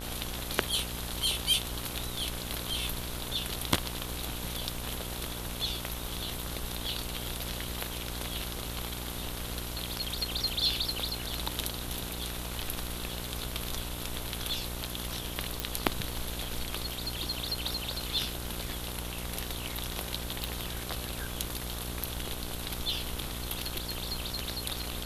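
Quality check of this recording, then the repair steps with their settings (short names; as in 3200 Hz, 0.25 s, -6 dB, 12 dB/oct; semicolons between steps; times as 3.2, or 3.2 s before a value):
buzz 60 Hz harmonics 26 -40 dBFS
15.6 pop
20.44 pop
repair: de-click; de-hum 60 Hz, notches 26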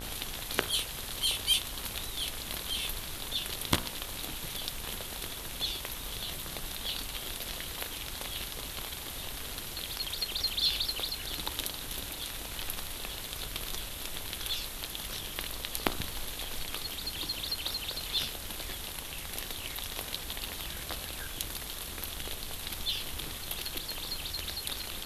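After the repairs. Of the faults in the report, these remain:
none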